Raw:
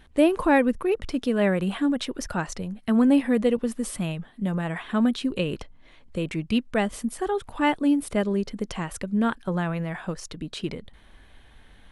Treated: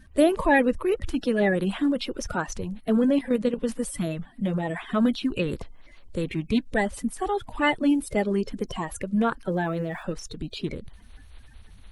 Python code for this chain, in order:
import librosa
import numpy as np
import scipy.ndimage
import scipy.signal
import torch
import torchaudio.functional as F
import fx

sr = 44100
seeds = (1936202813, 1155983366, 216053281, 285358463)

y = fx.spec_quant(x, sr, step_db=30)
y = fx.low_shelf(y, sr, hz=92.0, db=5.5)
y = fx.level_steps(y, sr, step_db=10, at=(2.95, 3.57))
y = fx.sample_gate(y, sr, floor_db=-52.5, at=(9.49, 10.03))